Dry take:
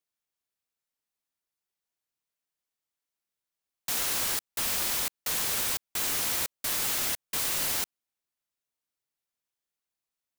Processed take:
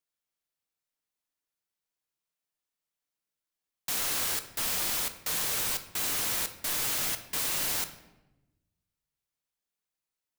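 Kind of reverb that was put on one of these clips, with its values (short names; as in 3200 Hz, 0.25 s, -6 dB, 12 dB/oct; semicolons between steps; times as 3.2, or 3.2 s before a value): shoebox room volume 400 m³, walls mixed, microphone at 0.48 m; gain -1.5 dB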